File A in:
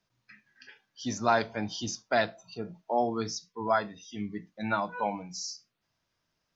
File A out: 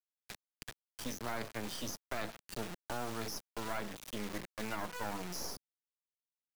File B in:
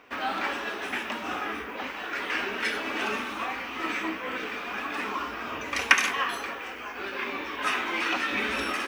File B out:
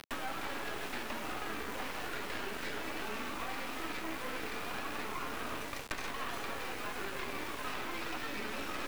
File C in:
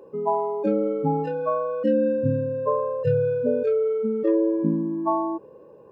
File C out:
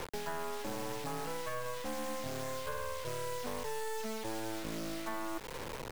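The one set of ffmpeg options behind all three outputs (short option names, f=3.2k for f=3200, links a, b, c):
-filter_complex "[0:a]highshelf=f=2.5k:g=-5,areverse,acompressor=threshold=-34dB:ratio=8,areverse,acrusher=bits=5:dc=4:mix=0:aa=0.000001,acrossover=split=250|960[a][b][c];[a]acompressor=threshold=-54dB:ratio=4[d];[b]acompressor=threshold=-55dB:ratio=4[e];[c]acompressor=threshold=-53dB:ratio=4[f];[d][e][f]amix=inputs=3:normalize=0,volume=11dB"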